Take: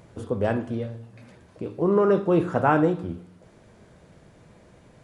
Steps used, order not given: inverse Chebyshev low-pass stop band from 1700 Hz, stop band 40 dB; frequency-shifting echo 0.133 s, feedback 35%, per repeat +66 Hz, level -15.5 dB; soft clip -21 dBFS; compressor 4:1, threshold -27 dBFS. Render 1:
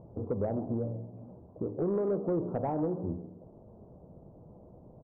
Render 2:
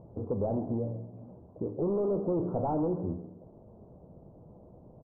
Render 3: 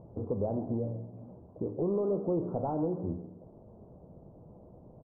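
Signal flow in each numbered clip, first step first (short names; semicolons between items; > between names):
compressor > inverse Chebyshev low-pass > frequency-shifting echo > soft clip; soft clip > inverse Chebyshev low-pass > compressor > frequency-shifting echo; compressor > soft clip > inverse Chebyshev low-pass > frequency-shifting echo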